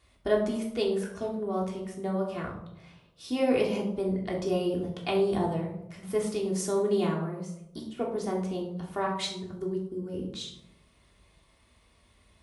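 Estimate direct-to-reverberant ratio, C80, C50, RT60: -2.5 dB, 9.0 dB, 6.0 dB, 0.85 s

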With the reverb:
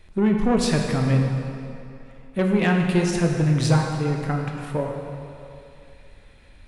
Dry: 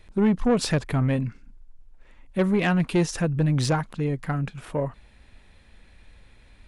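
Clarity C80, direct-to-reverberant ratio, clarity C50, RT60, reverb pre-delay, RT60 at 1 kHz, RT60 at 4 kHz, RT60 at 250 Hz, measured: 4.0 dB, 1.0 dB, 3.0 dB, 2.7 s, 9 ms, 2.7 s, 2.1 s, 2.6 s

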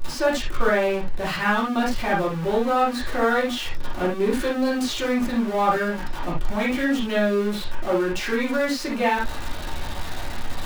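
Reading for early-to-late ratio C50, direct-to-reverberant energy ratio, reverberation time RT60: 3.5 dB, -7.0 dB, no single decay rate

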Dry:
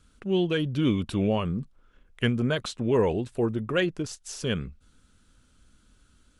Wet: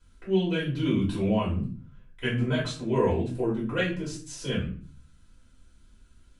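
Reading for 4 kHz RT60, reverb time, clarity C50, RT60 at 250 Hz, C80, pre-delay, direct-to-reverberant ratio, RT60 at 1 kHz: 0.30 s, 0.45 s, 7.0 dB, 0.60 s, 12.5 dB, 3 ms, -8.0 dB, 0.40 s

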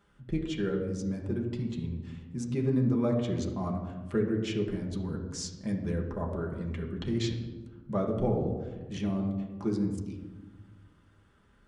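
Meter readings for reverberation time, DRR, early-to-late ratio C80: 1.3 s, -1.5 dB, 7.5 dB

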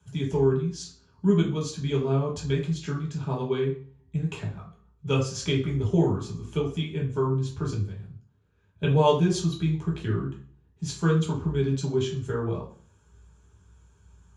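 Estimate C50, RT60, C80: 7.0 dB, 0.45 s, 11.0 dB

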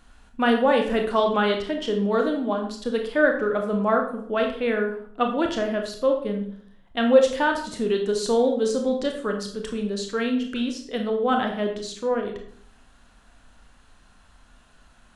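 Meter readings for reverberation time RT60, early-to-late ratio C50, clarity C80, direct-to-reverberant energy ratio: 0.60 s, 7.0 dB, 10.5 dB, 3.0 dB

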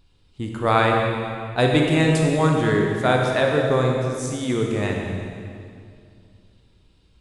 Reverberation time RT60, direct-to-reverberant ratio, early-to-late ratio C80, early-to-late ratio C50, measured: 2.4 s, 0.0 dB, 2.5 dB, 1.0 dB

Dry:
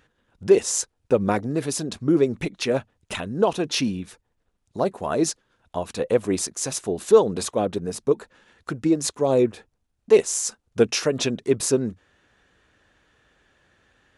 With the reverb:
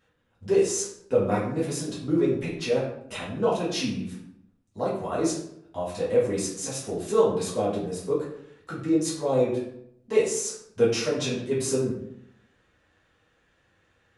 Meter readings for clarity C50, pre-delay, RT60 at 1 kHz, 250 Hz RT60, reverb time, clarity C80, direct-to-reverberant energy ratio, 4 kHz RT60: 3.5 dB, 3 ms, 0.65 s, 0.90 s, 0.70 s, 7.5 dB, -8.0 dB, 0.45 s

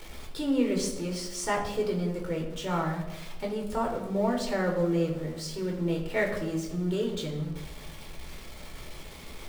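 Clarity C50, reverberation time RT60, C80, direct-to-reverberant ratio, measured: 7.0 dB, 1.0 s, 9.0 dB, 0.0 dB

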